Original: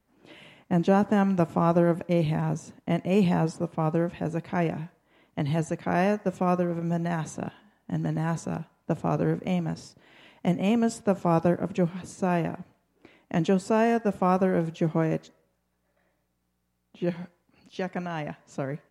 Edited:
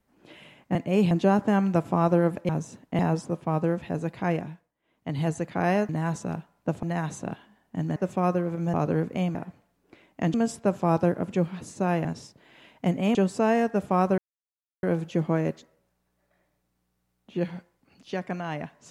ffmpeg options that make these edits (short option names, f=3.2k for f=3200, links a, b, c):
-filter_complex "[0:a]asplit=16[a][b][c][d][e][f][g][h][i][j][k][l][m][n][o][p];[a]atrim=end=0.752[q];[b]atrim=start=2.938:end=3.302[r];[c]atrim=start=0.748:end=2.132[s];[d]atrim=start=2.438:end=2.942[t];[e]atrim=start=3.298:end=5.05,asetpts=PTS-STARTPTS,afade=t=out:st=1.322:d=0.43:silence=0.125893[u];[f]atrim=start=5.05:end=5.13,asetpts=PTS-STARTPTS,volume=-18dB[v];[g]atrim=start=5.13:end=6.202,asetpts=PTS-STARTPTS,afade=t=in:d=0.43:silence=0.125893[w];[h]atrim=start=8.108:end=9.052[x];[i]atrim=start=6.978:end=8.112[y];[j]atrim=start=6.198:end=6.982[z];[k]atrim=start=9.048:end=9.662[aa];[l]atrim=start=12.468:end=13.462[ab];[m]atrim=start=10.758:end=12.472[ac];[n]atrim=start=9.658:end=10.762[ad];[o]atrim=start=13.458:end=14.49,asetpts=PTS-STARTPTS,afade=t=out:st=1.028:d=0.004:c=hsin,apad=pad_dur=0.65[ae];[p]atrim=start=14.49,asetpts=PTS-STARTPTS,afade=t=in:d=0.004:c=hsin[af];[q][r]acrossfade=d=0.004:c1=hsin:c2=hsin[ag];[ag][s]acrossfade=d=0.004:c1=hsin:c2=hsin[ah];[ah][t]acrossfade=d=0.004:c1=hsin:c2=hsin[ai];[u][v][w]concat=n=3:v=0:a=1[aj];[ai][aj]acrossfade=d=0.004:c1=hsin:c2=hsin[ak];[ak][x]acrossfade=d=0.004:c1=hsin:c2=hsin[al];[al][y]acrossfade=d=0.004:c1=hsin:c2=hsin[am];[am][z]acrossfade=d=0.004:c1=hsin:c2=hsin[an];[an][aa]acrossfade=d=0.004:c1=hsin:c2=hsin[ao];[ao][ab]acrossfade=d=0.004:c1=hsin:c2=hsin[ap];[ap][ac]acrossfade=d=0.004:c1=hsin:c2=hsin[aq];[aq][ad]acrossfade=d=0.004:c1=hsin:c2=hsin[ar];[ae][af]concat=n=2:v=0:a=1[as];[ar][as]acrossfade=d=0.004:c1=hsin:c2=hsin"